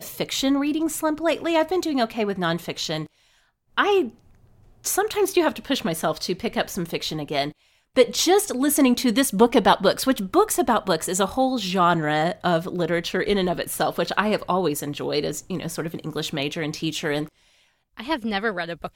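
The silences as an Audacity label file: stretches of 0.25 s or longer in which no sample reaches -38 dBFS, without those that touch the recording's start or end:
3.060000	3.780000	silence
4.100000	4.840000	silence
7.510000	7.960000	silence
17.280000	17.970000	silence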